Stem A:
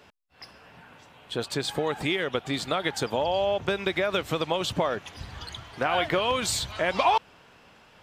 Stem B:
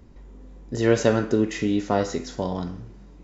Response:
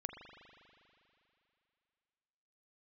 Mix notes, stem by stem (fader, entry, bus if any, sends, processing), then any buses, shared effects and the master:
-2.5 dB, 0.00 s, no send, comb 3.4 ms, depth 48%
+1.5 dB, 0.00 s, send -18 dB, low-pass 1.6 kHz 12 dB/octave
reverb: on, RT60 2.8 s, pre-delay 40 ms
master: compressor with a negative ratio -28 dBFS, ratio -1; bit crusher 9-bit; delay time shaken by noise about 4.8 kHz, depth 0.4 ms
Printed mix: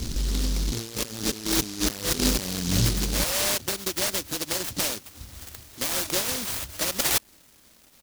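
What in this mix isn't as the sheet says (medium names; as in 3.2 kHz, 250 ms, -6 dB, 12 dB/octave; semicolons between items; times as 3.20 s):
stem A -2.5 dB -> -11.5 dB; stem B +1.5 dB -> +9.5 dB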